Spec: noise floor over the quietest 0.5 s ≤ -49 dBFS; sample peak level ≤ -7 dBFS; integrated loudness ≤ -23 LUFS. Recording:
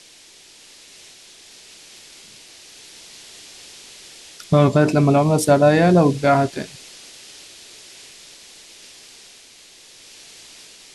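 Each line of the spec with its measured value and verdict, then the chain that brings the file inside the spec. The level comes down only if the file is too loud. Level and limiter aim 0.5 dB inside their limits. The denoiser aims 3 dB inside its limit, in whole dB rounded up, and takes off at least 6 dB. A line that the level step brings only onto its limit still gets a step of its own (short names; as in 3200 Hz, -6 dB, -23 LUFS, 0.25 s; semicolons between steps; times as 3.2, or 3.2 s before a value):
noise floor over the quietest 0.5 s -47 dBFS: fail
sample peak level -4.0 dBFS: fail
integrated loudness -16.0 LUFS: fail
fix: gain -7.5 dB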